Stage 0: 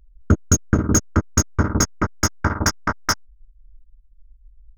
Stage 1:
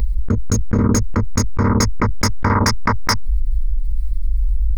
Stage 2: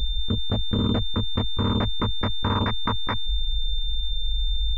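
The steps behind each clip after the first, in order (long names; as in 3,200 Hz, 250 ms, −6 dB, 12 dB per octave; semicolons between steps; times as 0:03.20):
EQ curve with evenly spaced ripples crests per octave 0.93, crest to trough 10 dB; envelope flattener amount 100%; level −5 dB
switching amplifier with a slow clock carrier 3,600 Hz; level −7.5 dB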